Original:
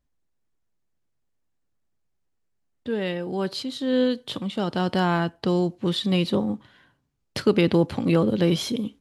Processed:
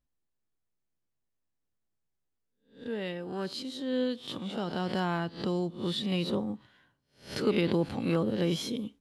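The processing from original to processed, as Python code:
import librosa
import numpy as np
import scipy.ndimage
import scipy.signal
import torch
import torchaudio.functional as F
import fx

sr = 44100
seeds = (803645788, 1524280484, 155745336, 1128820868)

y = fx.spec_swells(x, sr, rise_s=0.38)
y = y * 10.0 ** (-8.5 / 20.0)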